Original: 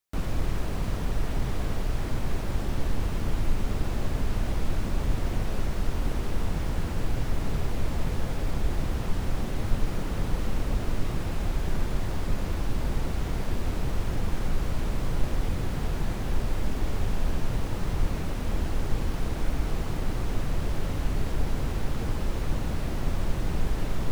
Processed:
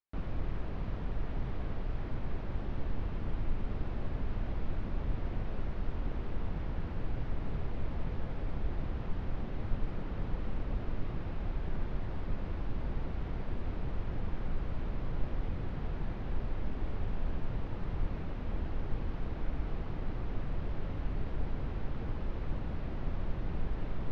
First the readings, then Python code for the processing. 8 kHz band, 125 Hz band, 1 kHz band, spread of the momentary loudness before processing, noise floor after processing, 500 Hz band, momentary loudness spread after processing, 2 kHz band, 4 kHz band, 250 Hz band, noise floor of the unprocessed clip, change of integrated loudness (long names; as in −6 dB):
below −25 dB, −7.5 dB, −9.0 dB, 1 LU, −39 dBFS, −8.5 dB, 1 LU, −10.0 dB, −15.0 dB, −8.0 dB, −31 dBFS, −8.0 dB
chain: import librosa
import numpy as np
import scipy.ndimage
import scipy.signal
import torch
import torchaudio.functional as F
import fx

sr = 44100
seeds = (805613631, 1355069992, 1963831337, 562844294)

y = fx.air_absorb(x, sr, metres=290.0)
y = y * librosa.db_to_amplitude(-7.5)